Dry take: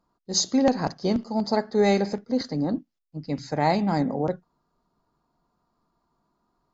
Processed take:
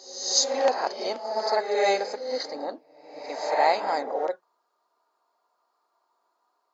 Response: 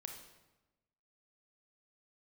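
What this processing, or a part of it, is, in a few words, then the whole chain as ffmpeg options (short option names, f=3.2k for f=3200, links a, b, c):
ghost voice: -filter_complex "[0:a]areverse[a];[1:a]atrim=start_sample=2205[b];[a][b]afir=irnorm=-1:irlink=0,areverse,highpass=f=480:w=0.5412,highpass=f=480:w=1.3066,volume=6.5dB"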